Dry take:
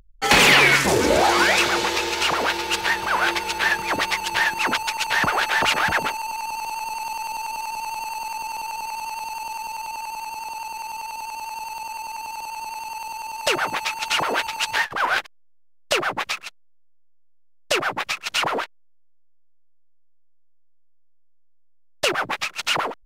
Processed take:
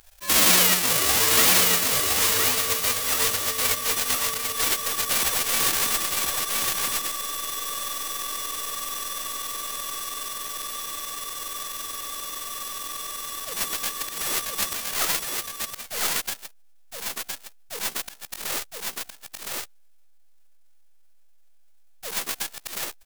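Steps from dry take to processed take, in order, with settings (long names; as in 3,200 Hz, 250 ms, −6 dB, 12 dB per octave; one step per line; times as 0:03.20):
spectral envelope flattened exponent 0.1
volume swells 168 ms
pitch shifter +4.5 semitones
on a send: single-tap delay 1,014 ms −3 dB
on the sum: level −2.5 dB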